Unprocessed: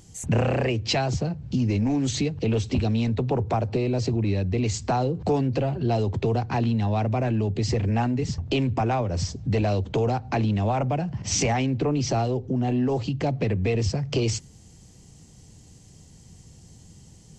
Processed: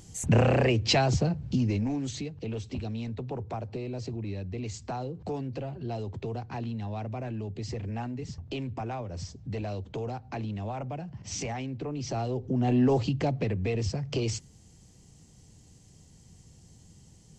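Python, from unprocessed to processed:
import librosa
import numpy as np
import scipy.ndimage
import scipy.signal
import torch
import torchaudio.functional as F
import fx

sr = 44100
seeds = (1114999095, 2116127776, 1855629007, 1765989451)

y = fx.gain(x, sr, db=fx.line((1.36, 0.5), (2.25, -11.0), (11.91, -11.0), (12.86, 1.5), (13.55, -5.5)))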